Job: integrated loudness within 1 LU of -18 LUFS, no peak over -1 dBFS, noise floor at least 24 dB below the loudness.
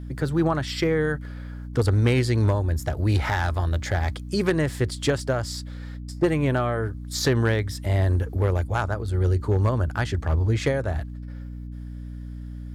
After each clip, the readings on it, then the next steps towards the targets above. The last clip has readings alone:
clipped samples 0.3%; clipping level -13.5 dBFS; hum 60 Hz; highest harmonic 300 Hz; hum level -33 dBFS; loudness -24.5 LUFS; peak level -13.5 dBFS; loudness target -18.0 LUFS
-> clip repair -13.5 dBFS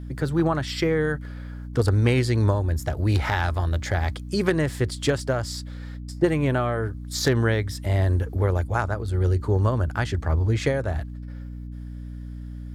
clipped samples 0.0%; hum 60 Hz; highest harmonic 300 Hz; hum level -32 dBFS
-> hum notches 60/120/180/240/300 Hz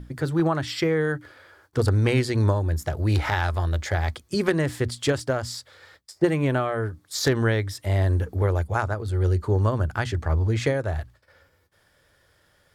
hum not found; loudness -24.5 LUFS; peak level -8.0 dBFS; loudness target -18.0 LUFS
-> trim +6.5 dB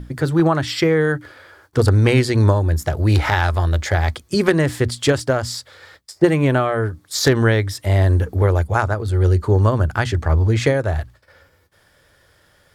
loudness -18.0 LUFS; peak level -1.5 dBFS; noise floor -57 dBFS

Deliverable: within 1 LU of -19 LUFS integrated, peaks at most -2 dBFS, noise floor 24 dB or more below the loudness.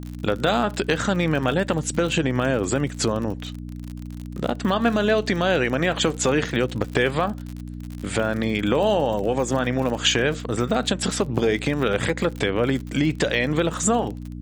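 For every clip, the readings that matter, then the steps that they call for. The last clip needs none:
tick rate 56 per s; hum 60 Hz; highest harmonic 300 Hz; hum level -32 dBFS; loudness -22.5 LUFS; peak level -6.0 dBFS; loudness target -19.0 LUFS
-> de-click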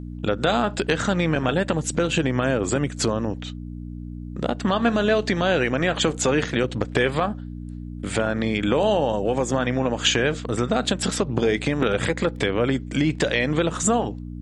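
tick rate 0.28 per s; hum 60 Hz; highest harmonic 300 Hz; hum level -32 dBFS
-> de-hum 60 Hz, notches 5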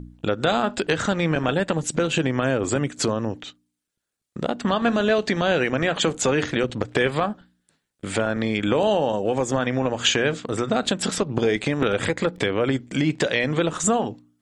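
hum not found; loudness -23.0 LUFS; peak level -6.5 dBFS; loudness target -19.0 LUFS
-> trim +4 dB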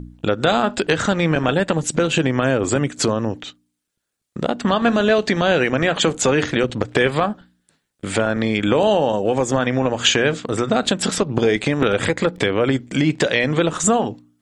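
loudness -19.0 LUFS; peak level -3.0 dBFS; noise floor -74 dBFS

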